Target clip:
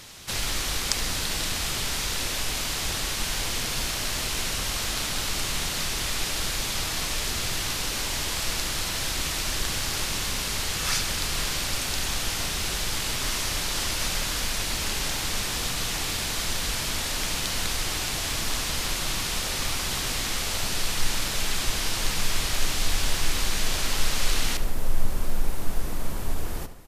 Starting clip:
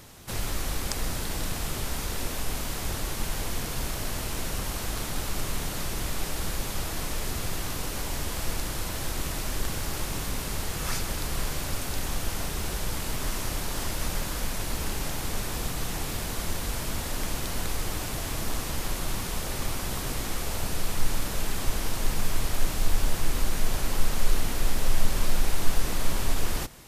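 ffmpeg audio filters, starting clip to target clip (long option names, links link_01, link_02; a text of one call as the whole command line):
ffmpeg -i in.wav -filter_complex "[0:a]asetnsamples=nb_out_samples=441:pad=0,asendcmd='24.57 equalizer g -6',equalizer=frequency=4000:width_type=o:width=3:gain=11.5,asplit=2[link_01][link_02];[link_02]adelay=73,lowpass=frequency=4700:poles=1,volume=-11dB,asplit=2[link_03][link_04];[link_04]adelay=73,lowpass=frequency=4700:poles=1,volume=0.52,asplit=2[link_05][link_06];[link_06]adelay=73,lowpass=frequency=4700:poles=1,volume=0.52,asplit=2[link_07][link_08];[link_08]adelay=73,lowpass=frequency=4700:poles=1,volume=0.52,asplit=2[link_09][link_10];[link_10]adelay=73,lowpass=frequency=4700:poles=1,volume=0.52,asplit=2[link_11][link_12];[link_12]adelay=73,lowpass=frequency=4700:poles=1,volume=0.52[link_13];[link_01][link_03][link_05][link_07][link_09][link_11][link_13]amix=inputs=7:normalize=0,volume=-2dB" out.wav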